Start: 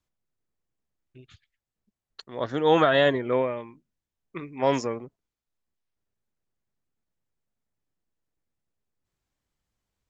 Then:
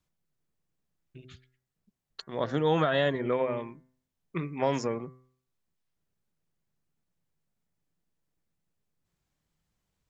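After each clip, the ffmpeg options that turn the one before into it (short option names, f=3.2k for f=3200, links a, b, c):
-af "equalizer=f=160:t=o:w=0.43:g=9,bandreject=f=128.1:t=h:w=4,bandreject=f=256.2:t=h:w=4,bandreject=f=384.3:t=h:w=4,bandreject=f=512.4:t=h:w=4,bandreject=f=640.5:t=h:w=4,bandreject=f=768.6:t=h:w=4,bandreject=f=896.7:t=h:w=4,bandreject=f=1.0248k:t=h:w=4,bandreject=f=1.1529k:t=h:w=4,bandreject=f=1.281k:t=h:w=4,bandreject=f=1.4091k:t=h:w=4,bandreject=f=1.5372k:t=h:w=4,bandreject=f=1.6653k:t=h:w=4,bandreject=f=1.7934k:t=h:w=4,bandreject=f=1.9215k:t=h:w=4,bandreject=f=2.0496k:t=h:w=4,bandreject=f=2.1777k:t=h:w=4,acompressor=threshold=-27dB:ratio=2.5,volume=1.5dB"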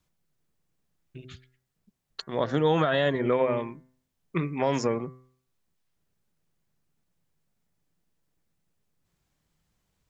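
-af "alimiter=limit=-18dB:level=0:latency=1:release=193,volume=5dB"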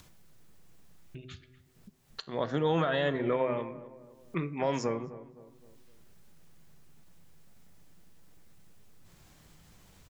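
-filter_complex "[0:a]flanger=delay=9:depth=3.9:regen=85:speed=0.22:shape=triangular,acompressor=mode=upward:threshold=-39dB:ratio=2.5,asplit=2[a][b];[b]adelay=258,lowpass=f=1.2k:p=1,volume=-15dB,asplit=2[c][d];[d]adelay=258,lowpass=f=1.2k:p=1,volume=0.46,asplit=2[e][f];[f]adelay=258,lowpass=f=1.2k:p=1,volume=0.46,asplit=2[g][h];[h]adelay=258,lowpass=f=1.2k:p=1,volume=0.46[i];[a][c][e][g][i]amix=inputs=5:normalize=0"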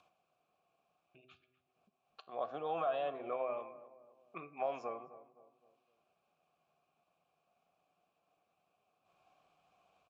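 -filter_complex "[0:a]asplit=3[a][b][c];[a]bandpass=f=730:t=q:w=8,volume=0dB[d];[b]bandpass=f=1.09k:t=q:w=8,volume=-6dB[e];[c]bandpass=f=2.44k:t=q:w=8,volume=-9dB[f];[d][e][f]amix=inputs=3:normalize=0,volume=3dB"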